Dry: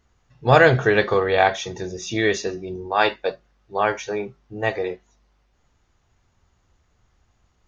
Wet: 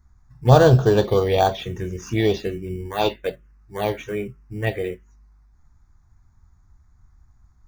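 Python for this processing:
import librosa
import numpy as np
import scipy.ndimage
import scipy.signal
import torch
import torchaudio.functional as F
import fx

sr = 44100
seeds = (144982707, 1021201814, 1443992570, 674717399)

p1 = fx.low_shelf(x, sr, hz=120.0, db=11.5)
p2 = fx.sample_hold(p1, sr, seeds[0], rate_hz=2600.0, jitter_pct=0)
p3 = p1 + (p2 * 10.0 ** (-10.0 / 20.0))
p4 = fx.env_phaser(p3, sr, low_hz=500.0, high_hz=2100.0, full_db=-10.5)
y = p4 * 10.0 ** (-1.0 / 20.0)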